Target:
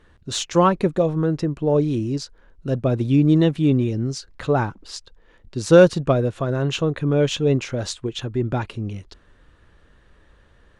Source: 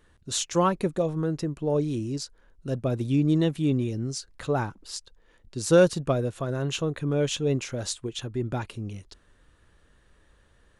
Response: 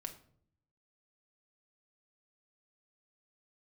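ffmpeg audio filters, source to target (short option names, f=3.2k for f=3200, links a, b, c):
-filter_complex "[0:a]highshelf=f=8.2k:g=-8,asplit=2[a][b];[b]adynamicsmooth=sensitivity=2:basefreq=7.6k,volume=1dB[c];[a][c]amix=inputs=2:normalize=0"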